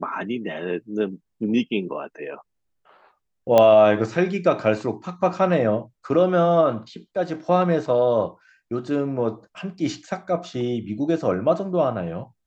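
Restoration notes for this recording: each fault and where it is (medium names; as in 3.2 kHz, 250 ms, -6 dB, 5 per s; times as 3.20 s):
3.58 s: pop -5 dBFS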